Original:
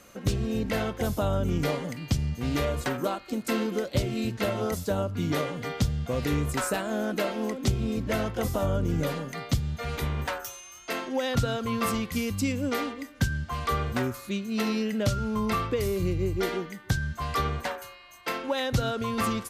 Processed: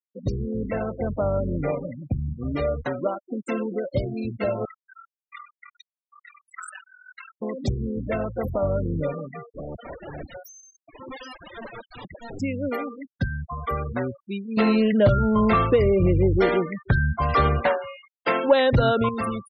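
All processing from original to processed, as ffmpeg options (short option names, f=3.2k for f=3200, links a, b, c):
-filter_complex "[0:a]asettb=1/sr,asplit=3[a][b][c];[a]atrim=end=0.464[d];[b]atrim=start=0.46:end=2.5,asetpts=PTS-STARTPTS,afade=t=in:d=0.004:c=qsin,afade=t=out:st=2.036:d=0.004:c=qsin,lowpass=2.6k,asplit=2[e][f];[f]adelay=171,lowpass=f=1.2k:p=1,volume=-15dB,asplit=2[g][h];[h]adelay=171,lowpass=f=1.2k:p=1,volume=0.51,asplit=2[i][j];[j]adelay=171,lowpass=f=1.2k:p=1,volume=0.51,asplit=2[k][l];[l]adelay=171,lowpass=f=1.2k:p=1,volume=0.51,asplit=2[m][n];[n]adelay=171,lowpass=f=1.2k:p=1,volume=0.51[o];[e][g][i][k][m][o]amix=inputs=6:normalize=0,atrim=end_sample=89964[p];[c]atrim=start=2.496[q];[d][p]acrossfade=d=0.004:c1=hsin:c2=qsin[r];[r][q]acrossfade=d=0.004:c1=qsin:c2=hsin,asettb=1/sr,asplit=3[s][t][u];[s]atrim=end=4.654[v];[t]atrim=start=4.65:end=7.42,asetpts=PTS-STARTPTS,afade=t=in:d=0.004:c=qsin,afade=t=out:st=2.766:d=0.004:c=qsin,highpass=f=1.1k:w=0.5412,highpass=f=1.1k:w=1.3066,aeval=exprs='val(0)*sin(2*PI*21*n/s)':c=same[w];[u]atrim=start=7.416[x];[v][w]acrossfade=d=0.004:c1=hsin:c2=qsin[y];[y][x]acrossfade=d=0.004:c1=qsin:c2=hsin,asettb=1/sr,asplit=3[z][aa][ab];[z]atrim=end=9.414[ac];[aa]atrim=start=9.41:end=12.4,asetpts=PTS-STARTPTS,afade=t=in:d=0.004:c=qsin,afade=t=out:st=2.986:d=0.004:c=qsin,aeval=exprs='(mod(28.2*val(0)+1,2)-1)/28.2':c=same,aecho=1:1:186:0.1,atrim=end_sample=131859[ad];[ab]atrim=start=12.396[ae];[ac][ad]acrossfade=d=0.004:c1=hsin:c2=qsin[af];[af][ae]acrossfade=d=0.004:c1=qsin:c2=hsin,asettb=1/sr,asplit=3[ag][ah][ai];[ag]atrim=end=14.574[aj];[ah]atrim=start=14.57:end=19.09,asetpts=PTS-STARTPTS,afade=t=in:d=0.004:c=qsin,afade=t=out:st=4.516:d=0.004:c=qsin,aeval=exprs='0.251*sin(PI/2*1.78*val(0)/0.251)':c=same,acrossover=split=3400[ak][al];[al]acompressor=threshold=-38dB:ratio=4:attack=1:release=60[am];[ak][am]amix=inputs=2:normalize=0[an];[ai]atrim=start=19.086[ao];[aj][an]acrossfade=d=0.004:c1=hsin:c2=qsin[ap];[ap][ao]acrossfade=d=0.004:c1=qsin:c2=hsin,afftfilt=real='re*gte(hypot(re,im),0.0447)':imag='im*gte(hypot(re,im),0.0447)':win_size=1024:overlap=0.75,equalizer=f=580:t=o:w=0.41:g=6"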